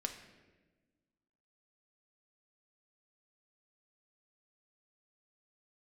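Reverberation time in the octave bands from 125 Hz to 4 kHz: 1.7 s, 1.9 s, 1.5 s, 1.0 s, 1.1 s, 0.85 s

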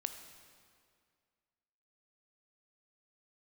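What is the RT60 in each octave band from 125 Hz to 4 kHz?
2.1 s, 2.2 s, 2.2 s, 2.1 s, 1.9 s, 1.8 s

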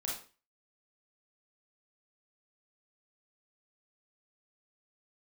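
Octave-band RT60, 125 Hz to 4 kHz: 0.40 s, 0.40 s, 0.35 s, 0.35 s, 0.35 s, 0.35 s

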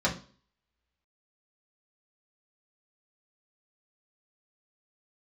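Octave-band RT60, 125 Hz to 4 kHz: 0.45 s, 0.50 s, 0.40 s, 0.40 s, 0.35 s, 0.45 s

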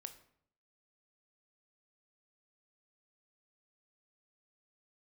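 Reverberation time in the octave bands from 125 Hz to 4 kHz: 0.80 s, 0.75 s, 0.65 s, 0.60 s, 0.55 s, 0.45 s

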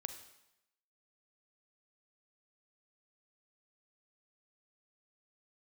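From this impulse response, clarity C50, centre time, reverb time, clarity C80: 9.0 dB, 14 ms, 0.85 s, 12.0 dB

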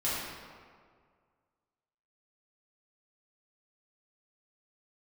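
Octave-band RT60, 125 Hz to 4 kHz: 2.0 s, 1.9 s, 2.0 s, 1.9 s, 1.5 s, 1.1 s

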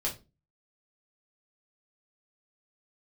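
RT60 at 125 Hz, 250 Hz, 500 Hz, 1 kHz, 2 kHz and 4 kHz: 0.50 s, 0.40 s, 0.30 s, 0.25 s, 0.20 s, 0.25 s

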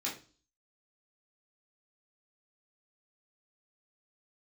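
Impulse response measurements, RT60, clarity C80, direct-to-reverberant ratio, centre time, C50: 0.35 s, 15.0 dB, -5.5 dB, 27 ms, 8.0 dB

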